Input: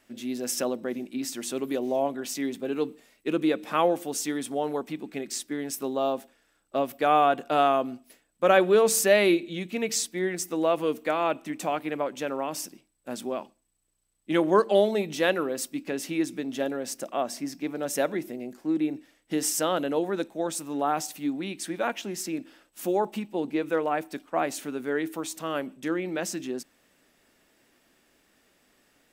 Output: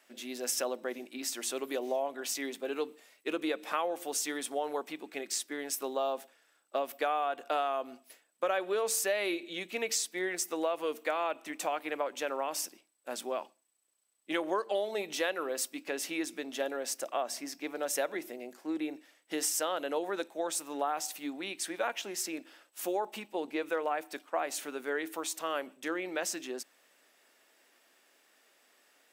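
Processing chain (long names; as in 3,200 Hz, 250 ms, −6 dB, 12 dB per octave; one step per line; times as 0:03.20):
high-pass filter 490 Hz 12 dB per octave
downward compressor 6 to 1, threshold −28 dBFS, peak gain reduction 11.5 dB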